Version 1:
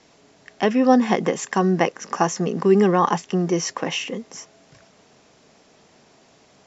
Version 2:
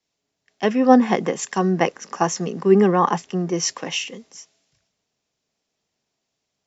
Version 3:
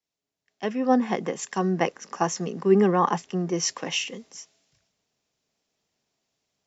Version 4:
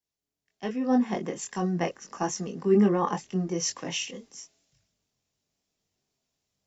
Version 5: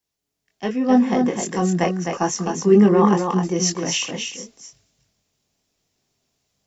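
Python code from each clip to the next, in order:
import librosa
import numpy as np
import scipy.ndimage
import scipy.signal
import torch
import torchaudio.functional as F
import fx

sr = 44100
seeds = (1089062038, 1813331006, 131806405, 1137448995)

y1 = fx.band_widen(x, sr, depth_pct=70)
y1 = y1 * 10.0 ** (-1.0 / 20.0)
y2 = fx.rider(y1, sr, range_db=5, speed_s=2.0)
y2 = y2 * 10.0 ** (-5.5 / 20.0)
y3 = fx.high_shelf(y2, sr, hz=5300.0, db=7.0)
y3 = fx.chorus_voices(y3, sr, voices=4, hz=0.31, base_ms=22, depth_ms=2.1, mix_pct=40)
y3 = fx.low_shelf(y3, sr, hz=240.0, db=9.5)
y3 = y3 * 10.0 ** (-3.5 / 20.0)
y4 = y3 + 10.0 ** (-5.0 / 20.0) * np.pad(y3, (int(258 * sr / 1000.0), 0))[:len(y3)]
y4 = y4 * 10.0 ** (7.5 / 20.0)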